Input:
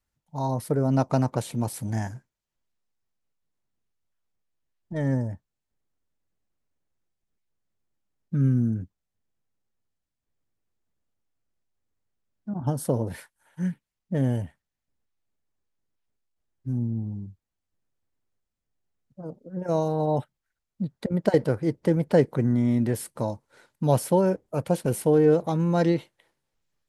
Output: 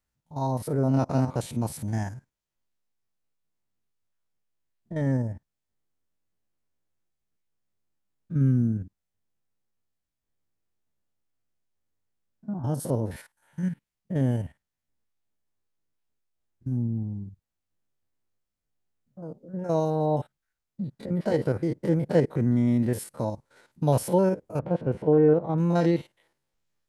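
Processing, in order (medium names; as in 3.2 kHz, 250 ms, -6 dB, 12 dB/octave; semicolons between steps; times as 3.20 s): spectrogram pixelated in time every 50 ms; 24.59–25.58 s: low-pass 1.7 kHz 12 dB/octave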